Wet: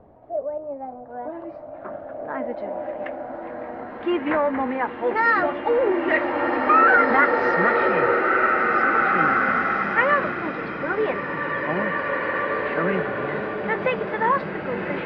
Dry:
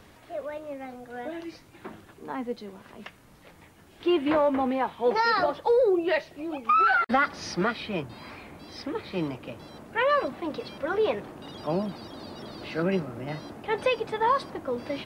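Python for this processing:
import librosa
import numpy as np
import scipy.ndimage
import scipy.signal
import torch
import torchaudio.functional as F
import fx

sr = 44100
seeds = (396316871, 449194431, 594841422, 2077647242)

y = fx.filter_sweep_lowpass(x, sr, from_hz=690.0, to_hz=1900.0, start_s=0.52, end_s=2.62, q=2.7)
y = fx.rev_bloom(y, sr, seeds[0], attack_ms=2380, drr_db=-1.5)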